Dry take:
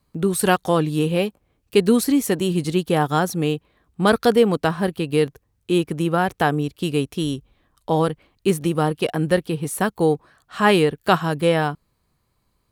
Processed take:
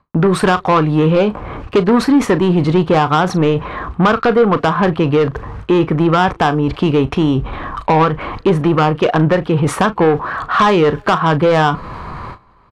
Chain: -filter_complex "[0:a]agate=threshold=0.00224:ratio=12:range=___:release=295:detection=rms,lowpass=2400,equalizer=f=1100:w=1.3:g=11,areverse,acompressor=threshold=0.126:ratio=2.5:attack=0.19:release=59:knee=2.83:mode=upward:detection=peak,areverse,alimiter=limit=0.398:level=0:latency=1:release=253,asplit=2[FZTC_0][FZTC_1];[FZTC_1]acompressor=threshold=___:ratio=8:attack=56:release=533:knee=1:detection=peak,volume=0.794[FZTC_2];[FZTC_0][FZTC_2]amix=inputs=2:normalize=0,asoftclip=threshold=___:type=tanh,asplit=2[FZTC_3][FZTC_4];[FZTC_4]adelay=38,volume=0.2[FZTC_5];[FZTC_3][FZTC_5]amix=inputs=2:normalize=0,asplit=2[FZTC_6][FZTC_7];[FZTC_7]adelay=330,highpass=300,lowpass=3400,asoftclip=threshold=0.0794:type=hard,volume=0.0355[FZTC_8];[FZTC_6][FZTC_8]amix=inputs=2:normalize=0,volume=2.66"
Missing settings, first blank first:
0.00126, 0.0447, 0.178